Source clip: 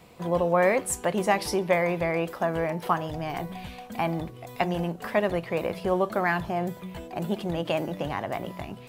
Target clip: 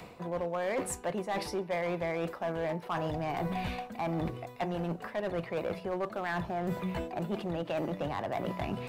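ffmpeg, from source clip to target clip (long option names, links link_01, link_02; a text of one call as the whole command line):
ffmpeg -i in.wav -filter_complex "[0:a]lowshelf=frequency=320:gain=-3.5,acrossover=split=110|1800[link_01][link_02][link_03];[link_03]acompressor=mode=upward:threshold=-59dB:ratio=2.5[link_04];[link_01][link_02][link_04]amix=inputs=3:normalize=0,highshelf=frequency=4600:gain=-11.5,areverse,acompressor=threshold=-38dB:ratio=8,areverse,bandreject=frequency=3200:width=16,asoftclip=type=hard:threshold=-35dB,volume=8.5dB" out.wav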